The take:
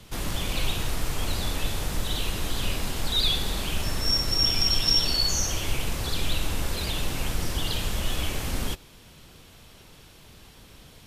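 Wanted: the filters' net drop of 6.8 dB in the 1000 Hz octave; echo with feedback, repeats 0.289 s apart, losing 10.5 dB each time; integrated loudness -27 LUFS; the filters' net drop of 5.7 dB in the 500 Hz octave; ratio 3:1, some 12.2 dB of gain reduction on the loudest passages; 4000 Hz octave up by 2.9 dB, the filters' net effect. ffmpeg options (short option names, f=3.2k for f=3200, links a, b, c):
-af "equalizer=f=500:t=o:g=-5.5,equalizer=f=1k:t=o:g=-7.5,equalizer=f=4k:t=o:g=4.5,acompressor=threshold=-34dB:ratio=3,aecho=1:1:289|578|867:0.299|0.0896|0.0269,volume=7.5dB"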